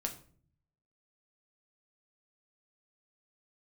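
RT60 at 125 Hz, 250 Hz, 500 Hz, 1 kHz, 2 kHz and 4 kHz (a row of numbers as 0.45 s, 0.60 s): 1.0 s, 0.80 s, 0.55 s, 0.40 s, 0.40 s, 0.35 s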